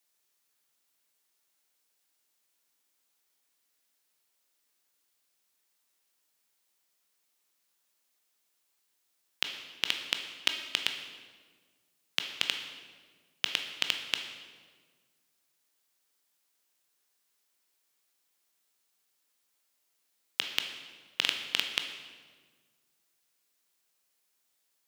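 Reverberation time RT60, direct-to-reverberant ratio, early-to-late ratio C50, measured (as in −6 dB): 1.6 s, 4.5 dB, 7.0 dB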